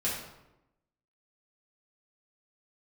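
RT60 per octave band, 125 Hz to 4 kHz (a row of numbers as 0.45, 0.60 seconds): 1.0, 1.1, 0.95, 0.90, 0.75, 0.60 seconds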